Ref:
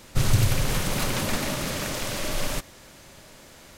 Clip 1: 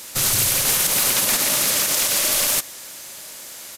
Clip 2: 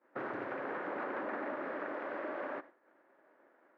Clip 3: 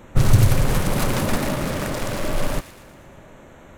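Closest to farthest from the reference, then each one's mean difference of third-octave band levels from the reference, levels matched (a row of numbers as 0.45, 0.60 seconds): 3, 1, 2; 4.0, 7.0, 15.5 decibels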